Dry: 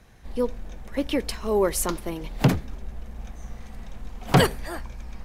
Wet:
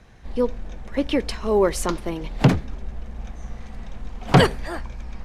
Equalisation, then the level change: distance through air 56 m; +3.5 dB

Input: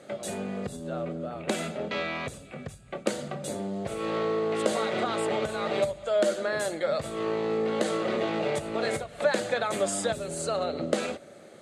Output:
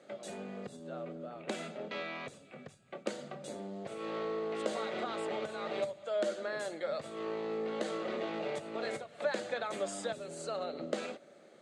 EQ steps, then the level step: band-pass 180–7200 Hz; -8.5 dB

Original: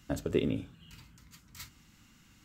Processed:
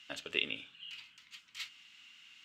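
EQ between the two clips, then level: band-pass filter 2.9 kHz, Q 3.1; +13.0 dB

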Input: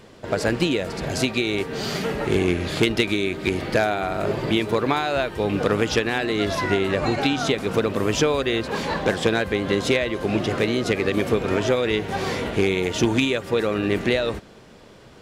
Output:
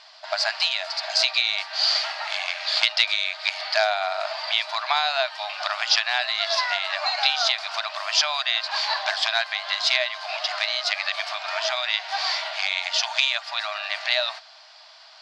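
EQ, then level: brick-wall FIR high-pass 600 Hz; resonant low-pass 4.7 kHz, resonance Q 5.4; 0.0 dB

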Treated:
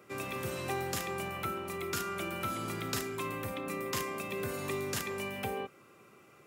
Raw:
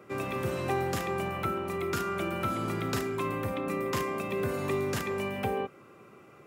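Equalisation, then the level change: treble shelf 2.5 kHz +10.5 dB; -6.5 dB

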